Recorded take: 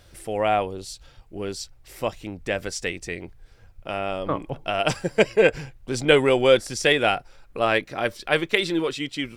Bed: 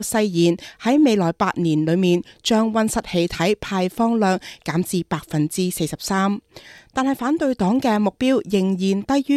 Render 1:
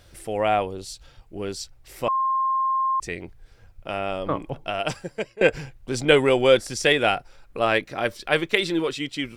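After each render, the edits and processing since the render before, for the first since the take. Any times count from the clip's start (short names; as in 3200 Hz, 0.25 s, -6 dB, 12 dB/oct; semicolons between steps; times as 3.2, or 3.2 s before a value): 2.08–3 bleep 1060 Hz -19.5 dBFS; 4.48–5.41 fade out, to -22.5 dB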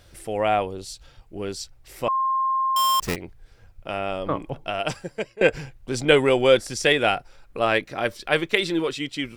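2.76–3.16 half-waves squared off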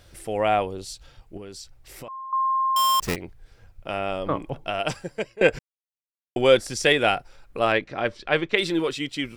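1.37–2.33 compressor, threshold -36 dBFS; 5.59–6.36 mute; 7.72–8.58 air absorption 120 m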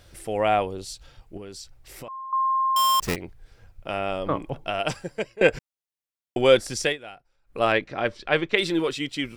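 6.8–7.61 dip -20.5 dB, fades 0.17 s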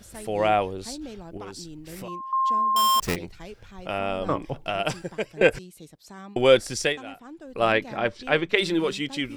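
add bed -23 dB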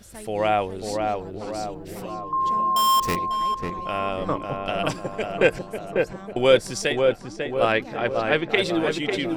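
darkening echo 0.546 s, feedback 57%, low-pass 1500 Hz, level -3 dB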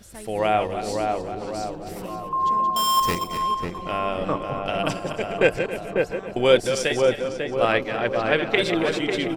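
reverse delay 0.135 s, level -8.5 dB; echo 0.274 s -15 dB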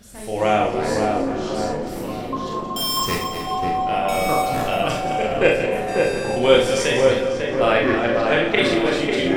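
echoes that change speed 0.179 s, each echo -6 st, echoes 2, each echo -6 dB; Schroeder reverb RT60 0.37 s, combs from 26 ms, DRR -0.5 dB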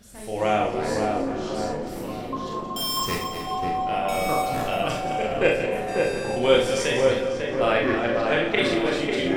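gain -4 dB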